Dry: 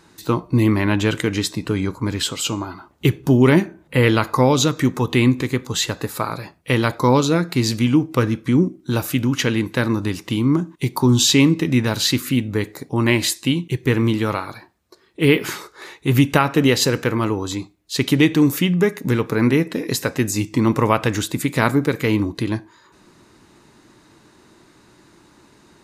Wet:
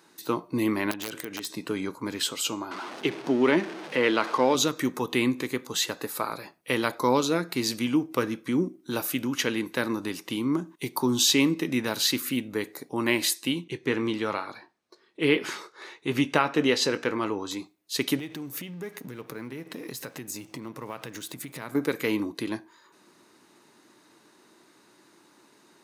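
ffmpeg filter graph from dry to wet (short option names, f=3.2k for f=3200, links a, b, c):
-filter_complex "[0:a]asettb=1/sr,asplit=3[a][b][c];[a]atrim=end=0.914[d];[b]atrim=start=0.91:end=1.55,asetpts=PTS-STARTPTS,afade=t=in:d=0.004:c=qsin,afade=t=out:st=0.636:d=0.004:c=qsin,highpass=f=43:p=1,acompressor=threshold=-24dB:ratio=6:attack=3.2:release=140:knee=1:detection=peak,aeval=exprs='(mod(8.91*val(0)+1,2)-1)/8.91':c=same[e];[c]atrim=start=1.546[f];[d][e]acrossfade=d=0.004:c1=hsin:c2=qsin[g];[g][f]acrossfade=d=0.004:c1=qsin:c2=hsin,asettb=1/sr,asplit=3[h][i][j];[h]atrim=end=2.714[k];[i]atrim=start=2.71:end=4.55,asetpts=PTS-STARTPTS,afade=t=in:d=0.004:c=qsin,afade=t=out:st=1.836:d=0.004:c=qsin,aeval=exprs='val(0)+0.5*0.0531*sgn(val(0))':c=same,highpass=210,lowpass=4.7k[l];[j]atrim=start=4.546[m];[k][l]acrossfade=d=0.004:c1=hsin:c2=qsin[n];[n][m]acrossfade=d=0.004:c1=qsin:c2=hsin,asettb=1/sr,asplit=3[o][p][q];[o]atrim=end=13.644[r];[p]atrim=start=13.64:end=17.51,asetpts=PTS-STARTPTS,afade=t=in:d=0.004:c=qsin,afade=t=out:st=3.866:d=0.004:c=qsin,lowpass=6.3k,asplit=2[s][t];[t]adelay=20,volume=-13.5dB[u];[s][u]amix=inputs=2:normalize=0,atrim=end_sample=170667[v];[q]atrim=start=17.506[w];[r][v]acrossfade=d=0.004:c1=hsin:c2=qsin[x];[x][w]acrossfade=d=0.004:c1=qsin:c2=hsin,asettb=1/sr,asplit=3[y][z][aa];[y]atrim=end=18.194[ab];[z]atrim=start=18.19:end=21.75,asetpts=PTS-STARTPTS,afade=t=in:d=0.004:c=qsin,afade=t=out:st=3.556:d=0.004:c=qsin,equalizer=f=130:w=2.2:g=10,acompressor=threshold=-25dB:ratio=5:attack=3.2:release=140:knee=1:detection=peak,aeval=exprs='sgn(val(0))*max(abs(val(0))-0.00422,0)':c=same[ac];[aa]atrim=start=21.746[ad];[ab][ac]acrossfade=d=0.004:c1=hsin:c2=qsin[ae];[ae][ad]acrossfade=d=0.004:c1=qsin:c2=hsin,highpass=250,highshelf=f=10k:g=7.5,bandreject=f=7.3k:w=13,volume=-6dB"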